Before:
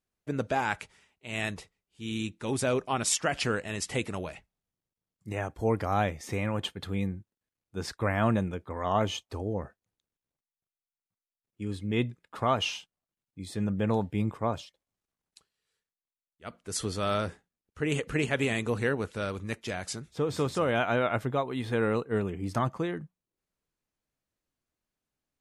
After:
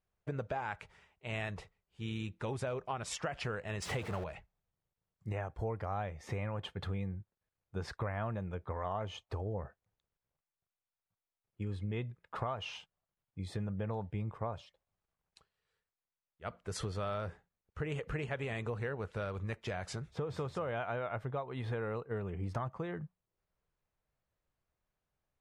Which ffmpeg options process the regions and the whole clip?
ffmpeg -i in.wav -filter_complex "[0:a]asettb=1/sr,asplit=3[link_01][link_02][link_03];[link_01]atrim=end=3.824[link_04];[link_02]atrim=start=3.82:end=4.24,asetpts=PTS-STARTPTS,afade=type=in:duration=0.004:curve=qsin,afade=type=out:start_time=0.416:duration=0.004:curve=qsin,aeval=exprs='val(0)+0.5*0.0266*sgn(val(0))':channel_layout=same,highpass=60[link_05];[link_03]atrim=start=4.236[link_06];[link_04][link_05]acrossfade=duration=0.004:curve1=hsin:curve2=qsin[link_07];[link_07][link_06]acrossfade=duration=0.004:curve1=qsin:curve2=hsin,lowpass=frequency=1100:poles=1,equalizer=frequency=270:width=1.4:gain=-12,acompressor=threshold=-41dB:ratio=6,volume=6dB" out.wav

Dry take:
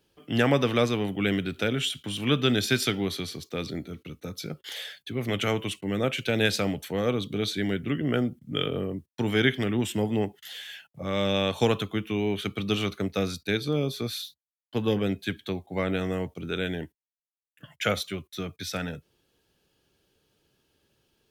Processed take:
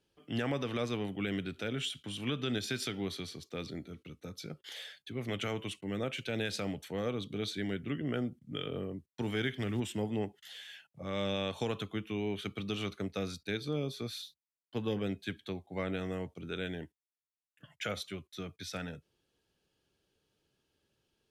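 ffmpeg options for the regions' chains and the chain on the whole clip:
ffmpeg -i in.wav -filter_complex "[0:a]asettb=1/sr,asplit=3[link_01][link_02][link_03];[link_01]atrim=end=9.224[link_04];[link_02]atrim=start=9.22:end=9.8,asetpts=PTS-STARTPTS,afade=type=in:duration=0.004:curve=qsin,afade=type=out:start_time=0.576:duration=0.004:curve=qsin,highpass=58,asubboost=boost=7.5:cutoff=160,acrusher=bits=8:mode=log:mix=0:aa=0.000001[link_05];[link_03]atrim=start=9.796[link_06];[link_04][link_05]acrossfade=duration=0.004:curve1=hsin:curve2=qsin[link_07];[link_07][link_06]acrossfade=duration=0.004:curve1=qsin:curve2=hsin,lowpass=11000,alimiter=limit=-15dB:level=0:latency=1:release=105,volume=-8dB" out.wav

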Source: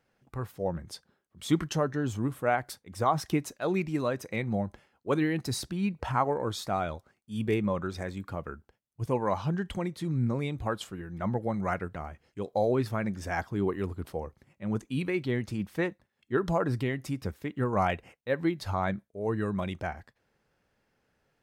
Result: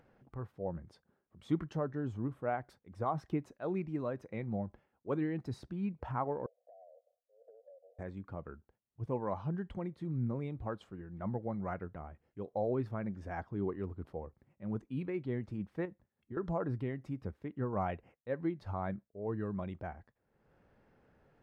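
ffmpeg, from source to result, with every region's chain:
ffmpeg -i in.wav -filter_complex "[0:a]asettb=1/sr,asplit=3[link_01][link_02][link_03];[link_01]atrim=end=6.464[link_04];[link_02]atrim=start=6.46:end=7.99,asetpts=PTS-STARTPTS,afade=type=in:duration=0.004:curve=qsin,afade=type=out:start_time=1.526:duration=0.004:curve=qsin,asuperpass=centerf=590:order=12:qfactor=2.4,acompressor=threshold=-48dB:ratio=6:attack=3.2:release=140:knee=1:detection=peak[link_05];[link_03]atrim=start=7.986[link_06];[link_04][link_05]acrossfade=duration=0.004:curve1=hsin:curve2=qsin[link_07];[link_07][link_06]acrossfade=duration=0.004:curve1=qsin:curve2=hsin,asettb=1/sr,asplit=3[link_08][link_09][link_10];[link_08]atrim=end=15.854[link_11];[link_09]atrim=start=15.85:end=16.37,asetpts=PTS-STARTPTS,afade=type=in:duration=0.004:curve=qsin,afade=type=out:start_time=0.516:duration=0.004:curve=qsin,acompressor=threshold=-37dB:ratio=4:attack=3.2:release=140:knee=1:detection=peak,lowshelf=frequency=260:gain=5.5[link_12];[link_10]atrim=start=16.366[link_13];[link_11][link_12]acrossfade=duration=0.004:curve1=hsin:curve2=qsin[link_14];[link_14][link_13]acrossfade=duration=0.004:curve1=qsin:curve2=hsin,lowpass=frequency=2600:poles=1,highshelf=frequency=2000:gain=-11.5,acompressor=mode=upward:threshold=-47dB:ratio=2.5,volume=-6.5dB" out.wav

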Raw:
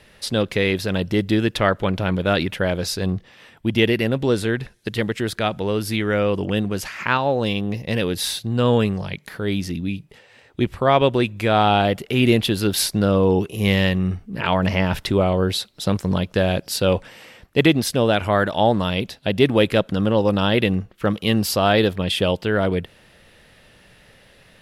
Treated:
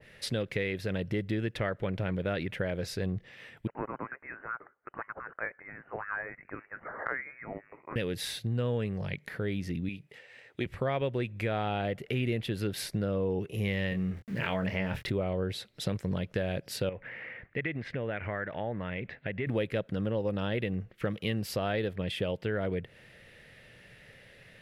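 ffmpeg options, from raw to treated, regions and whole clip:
ffmpeg -i in.wav -filter_complex "[0:a]asettb=1/sr,asplit=3[link_01][link_02][link_03];[link_01]atrim=end=3.674[link_04];[link_02]atrim=start=3.67:end=7.96,asetpts=PTS-STARTPTS,afade=type=in:duration=0.004:curve=qsin,afade=type=out:start_time=4.286:duration=0.004:curve=qsin,highpass=frequency=1300:width=0.5412,highpass=frequency=1300:width=1.3066,aphaser=in_gain=1:out_gain=1:delay=1.4:decay=0.38:speed=1.7:type=triangular,lowpass=frequency=2600:width_type=q:width=0.5098,lowpass=frequency=2600:width_type=q:width=0.6013,lowpass=frequency=2600:width_type=q:width=0.9,lowpass=frequency=2600:width_type=q:width=2.563,afreqshift=-3000[link_05];[link_03]atrim=start=7.956[link_06];[link_04][link_05]acrossfade=duration=0.004:curve1=hsin:curve2=qsin[link_07];[link_07][link_06]acrossfade=duration=0.004:curve1=qsin:curve2=hsin,asettb=1/sr,asplit=3[link_08][link_09][link_10];[link_08]atrim=end=9.894[link_11];[link_09]atrim=start=9.89:end=10.66,asetpts=PTS-STARTPTS,afade=type=in:duration=0.004:curve=qsin,afade=type=out:start_time=0.766:duration=0.004:curve=qsin,highpass=51,lowshelf=frequency=210:gain=-11.5[link_12];[link_10]atrim=start=10.656[link_13];[link_11][link_12]acrossfade=duration=0.004:curve1=hsin:curve2=qsin[link_14];[link_14][link_13]acrossfade=duration=0.004:curve1=qsin:curve2=hsin,asettb=1/sr,asplit=3[link_15][link_16][link_17];[link_15]atrim=end=13.894[link_18];[link_16]atrim=start=13.89:end=15.1,asetpts=PTS-STARTPTS,afade=type=in:duration=0.004:curve=qsin,afade=type=out:start_time=1.206:duration=0.004:curve=qsin,aeval=exprs='val(0)*gte(abs(val(0)),0.0106)':channel_layout=same,asplit=2[link_19][link_20];[link_20]adelay=26,volume=-7dB[link_21];[link_19][link_21]amix=inputs=2:normalize=0,atrim=end_sample=53361[link_22];[link_17]atrim=start=15.096[link_23];[link_18][link_22]acrossfade=duration=0.004:curve1=hsin:curve2=qsin[link_24];[link_24][link_23]acrossfade=duration=0.004:curve1=qsin:curve2=hsin,asettb=1/sr,asplit=3[link_25][link_26][link_27];[link_25]atrim=end=16.894[link_28];[link_26]atrim=start=16.89:end=19.47,asetpts=PTS-STARTPTS,afade=type=in:duration=0.004:curve=qsin,afade=type=out:start_time=2.576:duration=0.004:curve=qsin,lowpass=frequency=2000:width_type=q:width=2.6,acompressor=threshold=-32dB:ratio=2:attack=3.2:release=140:knee=1:detection=peak[link_29];[link_27]atrim=start=19.466[link_30];[link_28][link_29]acrossfade=duration=0.004:curve1=hsin:curve2=qsin[link_31];[link_31][link_30]acrossfade=duration=0.004:curve1=qsin:curve2=hsin,equalizer=frequency=125:width_type=o:width=1:gain=8,equalizer=frequency=500:width_type=o:width=1:gain=6,equalizer=frequency=1000:width_type=o:width=1:gain=-4,equalizer=frequency=2000:width_type=o:width=1:gain=10,acompressor=threshold=-21dB:ratio=3,adynamicequalizer=threshold=0.0112:dfrequency=1800:dqfactor=0.7:tfrequency=1800:tqfactor=0.7:attack=5:release=100:ratio=0.375:range=2.5:mode=cutabove:tftype=highshelf,volume=-9dB" out.wav

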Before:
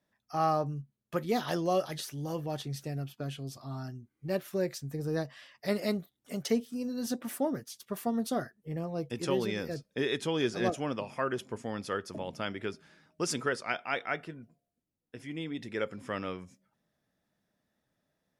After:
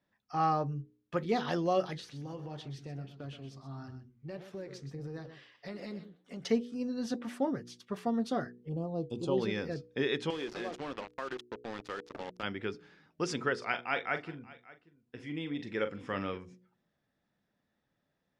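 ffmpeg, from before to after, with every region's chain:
ffmpeg -i in.wav -filter_complex "[0:a]asettb=1/sr,asplit=3[link_01][link_02][link_03];[link_01]atrim=end=1.974[link_04];[link_02]atrim=start=1.97:end=6.44,asetpts=PTS-STARTPTS,afade=type=in:duration=0.004:curve=qsin,afade=type=out:start_time=4.466:duration=0.004:curve=qsin,flanger=delay=3.4:depth=8.8:regen=-87:speed=1.6:shape=triangular,acompressor=threshold=-37dB:ratio=6:attack=3.2:release=140:knee=1:detection=peak,aecho=1:1:125:0.282,atrim=end_sample=197127[link_05];[link_03]atrim=start=6.436[link_06];[link_04][link_05]acrossfade=duration=0.004:curve1=hsin:curve2=qsin[link_07];[link_07][link_06]acrossfade=duration=0.004:curve1=qsin:curve2=hsin,asettb=1/sr,asplit=3[link_08][link_09][link_10];[link_08]atrim=end=8.694[link_11];[link_09]atrim=start=8.69:end=9.38,asetpts=PTS-STARTPTS,afade=type=in:duration=0.004:curve=qsin,afade=type=out:start_time=0.686:duration=0.004:curve=qsin,asuperstop=centerf=1900:order=4:qfactor=0.75,equalizer=frequency=5400:width=6.7:gain=-14[link_12];[link_10]atrim=start=9.376[link_13];[link_11][link_12]acrossfade=duration=0.004:curve1=hsin:curve2=qsin[link_14];[link_14][link_13]acrossfade=duration=0.004:curve1=qsin:curve2=hsin,asettb=1/sr,asplit=3[link_15][link_16][link_17];[link_15]atrim=end=10.304[link_18];[link_16]atrim=start=10.3:end=12.43,asetpts=PTS-STARTPTS,afade=type=in:duration=0.004:curve=qsin,afade=type=out:start_time=2.126:duration=0.004:curve=qsin,highpass=250,acrusher=bits=5:mix=0:aa=0.5,acompressor=threshold=-34dB:ratio=4:attack=3.2:release=140:knee=1:detection=peak[link_19];[link_17]atrim=start=12.426[link_20];[link_18][link_19]acrossfade=duration=0.004:curve1=hsin:curve2=qsin[link_21];[link_21][link_20]acrossfade=duration=0.004:curve1=qsin:curve2=hsin,asettb=1/sr,asplit=3[link_22][link_23][link_24];[link_22]atrim=end=13.544[link_25];[link_23]atrim=start=13.54:end=16.38,asetpts=PTS-STARTPTS,afade=type=in:duration=0.004:curve=qsin,afade=type=out:start_time=2.836:duration=0.004:curve=qsin,asplit=2[link_26][link_27];[link_27]adelay=41,volume=-10dB[link_28];[link_26][link_28]amix=inputs=2:normalize=0,atrim=end_sample=125244,aecho=1:1:582:0.0891,atrim=end_sample=125244[link_29];[link_24]atrim=start=16.376[link_30];[link_25][link_29]acrossfade=duration=0.004:curve1=hsin:curve2=qsin[link_31];[link_31][link_30]acrossfade=duration=0.004:curve1=qsin:curve2=hsin,lowpass=4500,bandreject=frequency=630:width=12,bandreject=frequency=60.56:width_type=h:width=4,bandreject=frequency=121.12:width_type=h:width=4,bandreject=frequency=181.68:width_type=h:width=4,bandreject=frequency=242.24:width_type=h:width=4,bandreject=frequency=302.8:width_type=h:width=4,bandreject=frequency=363.36:width_type=h:width=4,bandreject=frequency=423.92:width_type=h:width=4,bandreject=frequency=484.48:width_type=h:width=4" out.wav

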